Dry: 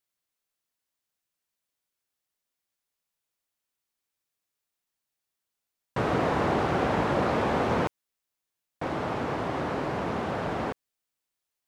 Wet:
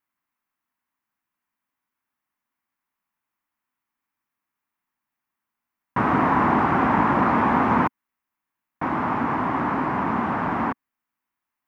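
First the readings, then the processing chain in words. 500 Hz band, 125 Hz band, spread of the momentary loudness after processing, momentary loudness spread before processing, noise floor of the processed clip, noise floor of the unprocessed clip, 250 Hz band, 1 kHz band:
-0.5 dB, +3.0 dB, 8 LU, 8 LU, under -85 dBFS, under -85 dBFS, +7.5 dB, +9.0 dB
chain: ten-band graphic EQ 250 Hz +11 dB, 500 Hz -8 dB, 1 kHz +12 dB, 2 kHz +6 dB, 4 kHz -8 dB, 8 kHz -8 dB

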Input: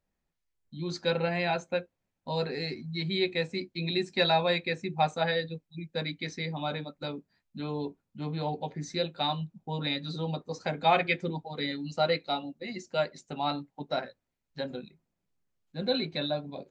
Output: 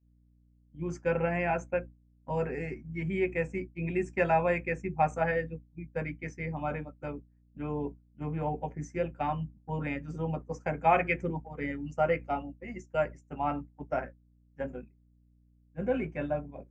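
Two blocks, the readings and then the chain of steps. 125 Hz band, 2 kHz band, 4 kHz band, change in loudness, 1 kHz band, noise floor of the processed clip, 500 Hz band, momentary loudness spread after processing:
0.0 dB, -1.5 dB, -23.0 dB, -1.0 dB, 0.0 dB, -64 dBFS, 0.0 dB, 13 LU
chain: hum 60 Hz, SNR 13 dB; Butterworth band-stop 4 kHz, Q 1.1; expander -33 dBFS

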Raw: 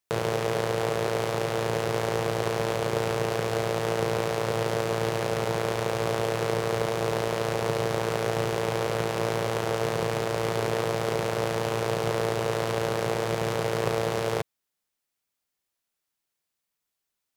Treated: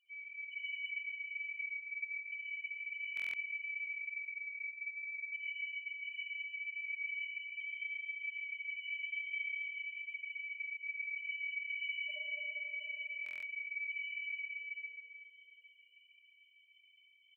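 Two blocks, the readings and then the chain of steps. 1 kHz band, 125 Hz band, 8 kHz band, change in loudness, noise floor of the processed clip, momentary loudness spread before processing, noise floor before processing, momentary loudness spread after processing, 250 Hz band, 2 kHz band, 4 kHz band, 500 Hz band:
under -40 dB, under -40 dB, under -40 dB, -12.0 dB, -67 dBFS, 1 LU, -83 dBFS, 4 LU, under -40 dB, -2.5 dB, -13.5 dB, under -40 dB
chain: bass shelf 480 Hz -8 dB; upward compressor, threshold -32 dBFS; frequency shift +480 Hz; volume shaper 121 bpm, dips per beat 2, -12 dB, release 68 ms; cascade formant filter i; loudest bins only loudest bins 1; two-band feedback delay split 750 Hz, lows 216 ms, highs 138 ms, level -3 dB; algorithmic reverb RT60 2.9 s, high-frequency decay 0.75×, pre-delay 30 ms, DRR -8.5 dB; buffer glitch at 3.15/13.24 s, samples 1024, times 7; trim +17 dB

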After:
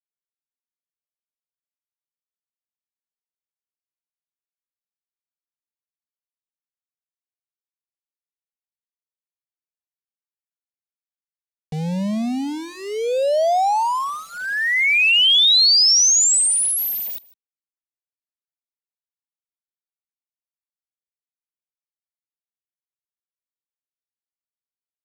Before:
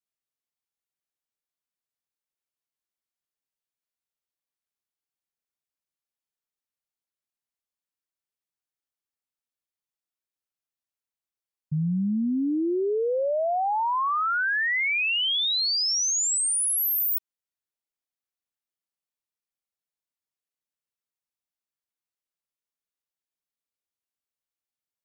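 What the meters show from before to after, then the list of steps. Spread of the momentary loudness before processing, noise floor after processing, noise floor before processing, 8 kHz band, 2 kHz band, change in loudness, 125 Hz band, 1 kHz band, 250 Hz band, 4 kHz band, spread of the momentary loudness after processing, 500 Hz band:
4 LU, under -85 dBFS, under -85 dBFS, +8.5 dB, +6.0 dB, +8.5 dB, +1.0 dB, +4.5 dB, +0.5 dB, +11.0 dB, 18 LU, +4.5 dB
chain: tilt shelf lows -6 dB, about 710 Hz; small samples zeroed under -31.5 dBFS; distance through air 55 m; static phaser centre 360 Hz, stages 6; on a send: delay 154 ms -22.5 dB; on the sum: trim +8.5 dB

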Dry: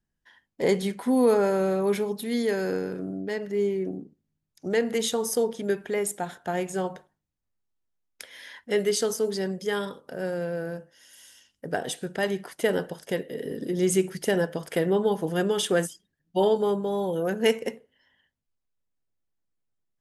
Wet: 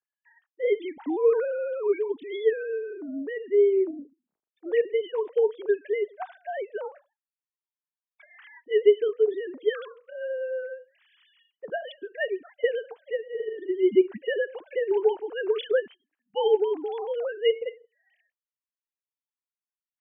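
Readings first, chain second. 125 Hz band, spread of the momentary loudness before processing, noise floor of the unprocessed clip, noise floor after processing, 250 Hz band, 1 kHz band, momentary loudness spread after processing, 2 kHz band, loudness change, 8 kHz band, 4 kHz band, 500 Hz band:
under -25 dB, 10 LU, -81 dBFS, under -85 dBFS, -6.0 dB, -5.5 dB, 13 LU, -2.5 dB, 0.0 dB, under -40 dB, -6.0 dB, +1.5 dB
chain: formants replaced by sine waves

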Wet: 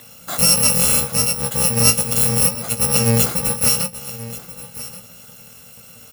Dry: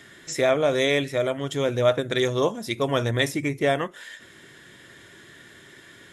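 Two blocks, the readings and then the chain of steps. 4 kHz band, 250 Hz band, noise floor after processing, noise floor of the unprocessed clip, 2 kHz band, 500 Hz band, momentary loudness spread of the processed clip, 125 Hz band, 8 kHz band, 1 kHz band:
+9.0 dB, +3.5 dB, -43 dBFS, -50 dBFS, 0.0 dB, -5.0 dB, 18 LU, +7.5 dB, +23.0 dB, +2.0 dB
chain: bit-reversed sample order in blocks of 128 samples; peaking EQ 410 Hz +9.5 dB 3 oct; doubling 17 ms -7 dB; on a send: delay 1131 ms -16 dB; on the sum: trim +4.5 dB

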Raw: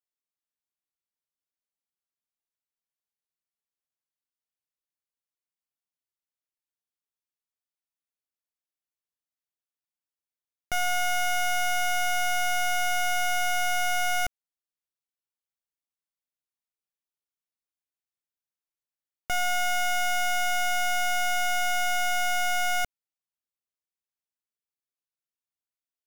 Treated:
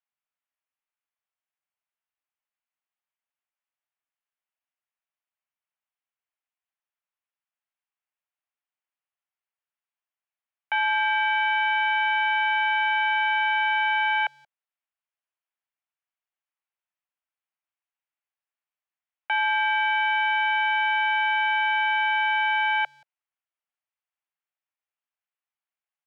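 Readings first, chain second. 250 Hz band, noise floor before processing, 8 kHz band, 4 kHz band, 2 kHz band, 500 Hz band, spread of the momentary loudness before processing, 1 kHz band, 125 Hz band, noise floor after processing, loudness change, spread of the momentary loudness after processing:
under -20 dB, under -85 dBFS, under -35 dB, +1.0 dB, +6.0 dB, under -15 dB, 2 LU, +4.5 dB, no reading, under -85 dBFS, +4.0 dB, 2 LU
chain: mistuned SSB +140 Hz 490–2900 Hz; speakerphone echo 180 ms, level -29 dB; trim +5 dB

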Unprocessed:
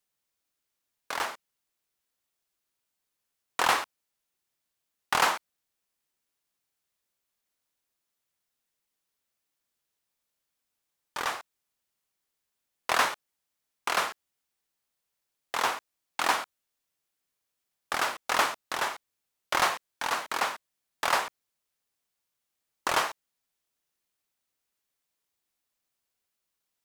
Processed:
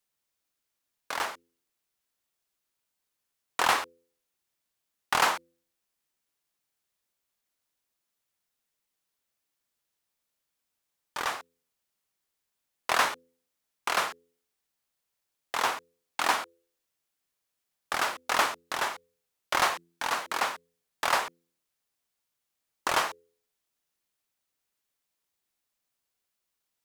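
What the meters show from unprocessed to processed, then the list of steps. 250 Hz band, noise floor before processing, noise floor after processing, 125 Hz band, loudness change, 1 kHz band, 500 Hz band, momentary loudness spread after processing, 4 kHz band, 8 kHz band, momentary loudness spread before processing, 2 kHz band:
-0.5 dB, -83 dBFS, -83 dBFS, -0.5 dB, 0.0 dB, 0.0 dB, 0.0 dB, 14 LU, 0.0 dB, 0.0 dB, 14 LU, 0.0 dB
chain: de-hum 84.92 Hz, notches 6

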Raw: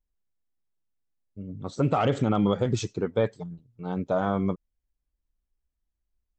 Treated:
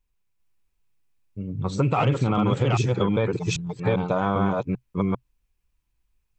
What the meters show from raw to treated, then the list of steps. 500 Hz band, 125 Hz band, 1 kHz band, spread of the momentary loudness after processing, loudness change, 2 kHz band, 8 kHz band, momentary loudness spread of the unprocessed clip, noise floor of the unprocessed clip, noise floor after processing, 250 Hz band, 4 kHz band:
+2.0 dB, +6.5 dB, +4.0 dB, 9 LU, +2.5 dB, +6.5 dB, +5.0 dB, 16 LU, -83 dBFS, -75 dBFS, +3.0 dB, +5.0 dB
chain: chunks repeated in reverse 396 ms, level -0.5 dB; graphic EQ with 31 bands 125 Hz +7 dB, 250 Hz -4 dB, 630 Hz -5 dB, 1 kHz +5 dB, 2.5 kHz +9 dB; compression 4:1, threshold -25 dBFS, peak gain reduction 10.5 dB; trim +6 dB

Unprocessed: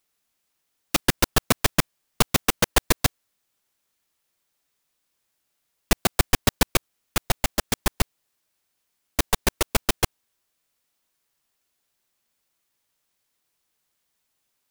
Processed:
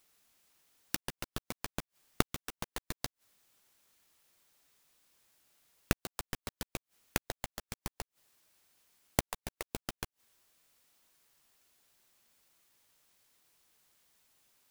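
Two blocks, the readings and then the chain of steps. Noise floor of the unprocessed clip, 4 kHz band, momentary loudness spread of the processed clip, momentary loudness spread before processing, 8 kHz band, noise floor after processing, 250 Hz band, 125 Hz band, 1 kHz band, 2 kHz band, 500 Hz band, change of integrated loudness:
-76 dBFS, -17.0 dB, 10 LU, 7 LU, -16.0 dB, under -85 dBFS, -13.5 dB, -15.0 dB, -15.5 dB, -15.5 dB, -15.0 dB, -15.5 dB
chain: inverted gate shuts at -16 dBFS, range -30 dB; trim +5 dB

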